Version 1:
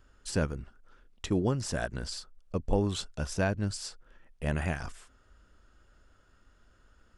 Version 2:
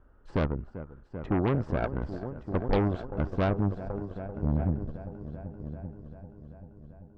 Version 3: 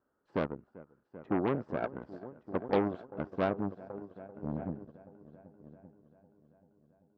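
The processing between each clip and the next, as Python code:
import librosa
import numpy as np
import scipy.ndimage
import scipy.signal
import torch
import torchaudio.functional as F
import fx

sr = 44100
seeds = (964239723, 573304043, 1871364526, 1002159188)

y1 = fx.filter_sweep_lowpass(x, sr, from_hz=960.0, to_hz=160.0, start_s=3.26, end_s=5.08, q=1.0)
y1 = fx.echo_heads(y1, sr, ms=390, heads='all three', feedback_pct=50, wet_db=-15.5)
y1 = fx.cheby_harmonics(y1, sr, harmonics=(5, 8), levels_db=(-22, -16), full_scale_db=-14.5)
y2 = scipy.signal.sosfilt(scipy.signal.butter(2, 210.0, 'highpass', fs=sr, output='sos'), y1)
y2 = fx.high_shelf(y2, sr, hz=4000.0, db=-9.0)
y2 = fx.upward_expand(y2, sr, threshold_db=-48.0, expansion=1.5)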